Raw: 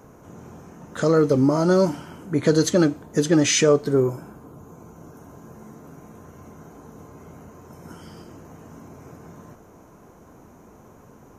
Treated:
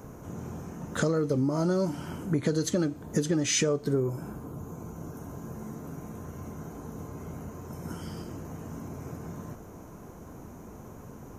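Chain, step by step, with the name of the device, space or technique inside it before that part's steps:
ASMR close-microphone chain (low-shelf EQ 240 Hz +7 dB; downward compressor 6 to 1, threshold −24 dBFS, peak gain reduction 13 dB; high-shelf EQ 6,800 Hz +5.5 dB)

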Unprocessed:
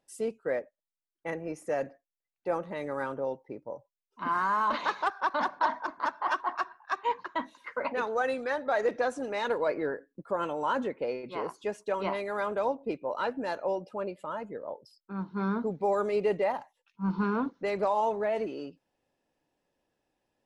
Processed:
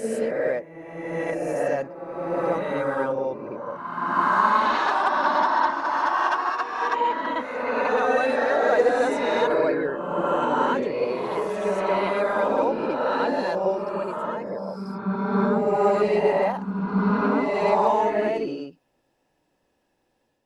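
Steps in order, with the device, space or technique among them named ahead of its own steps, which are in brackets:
reverse reverb (reversed playback; convolution reverb RT60 1.8 s, pre-delay 49 ms, DRR −3 dB; reversed playback)
level +3.5 dB

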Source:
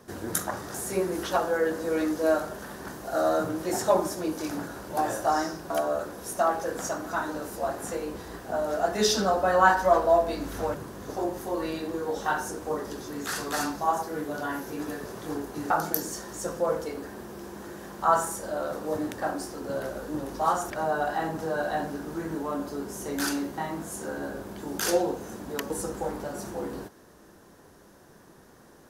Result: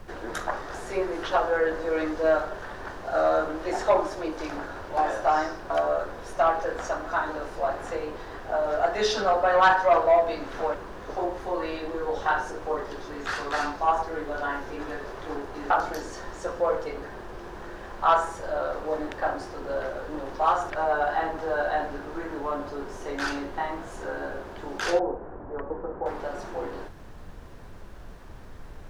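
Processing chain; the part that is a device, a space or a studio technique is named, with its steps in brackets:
aircraft cabin announcement (band-pass filter 440–3,300 Hz; soft clipping −15 dBFS, distortion −18 dB; brown noise bed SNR 14 dB)
0:24.99–0:26.06: Bessel low-pass filter 1,000 Hz, order 4
level +4 dB

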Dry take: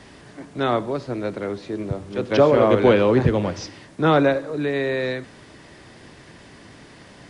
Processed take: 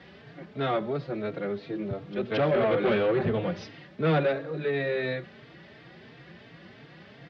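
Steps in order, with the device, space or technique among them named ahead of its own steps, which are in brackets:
barber-pole flanger into a guitar amplifier (barber-pole flanger 3.8 ms +2.9 Hz; soft clipping −18.5 dBFS, distortion −11 dB; loudspeaker in its box 88–4,000 Hz, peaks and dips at 94 Hz −7 dB, 160 Hz +5 dB, 280 Hz −6 dB, 980 Hz −7 dB)

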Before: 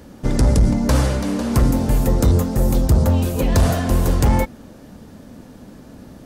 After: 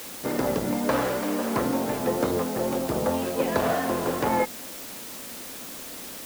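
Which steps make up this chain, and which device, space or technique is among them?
wax cylinder (band-pass filter 350–2,400 Hz; tape wow and flutter; white noise bed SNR 12 dB)

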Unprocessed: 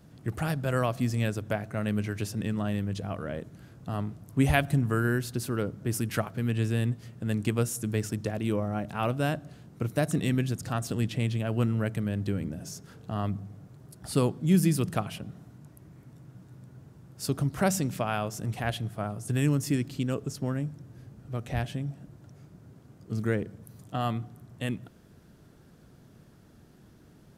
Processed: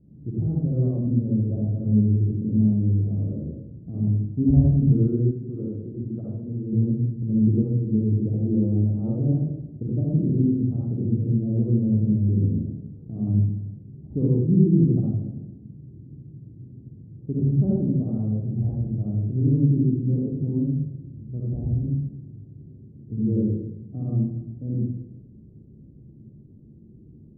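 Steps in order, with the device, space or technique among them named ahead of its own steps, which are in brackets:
next room (low-pass filter 380 Hz 24 dB per octave; convolution reverb RT60 0.85 s, pre-delay 50 ms, DRR −6 dB)
0:05.31–0:06.73: low-shelf EQ 430 Hz −8.5 dB

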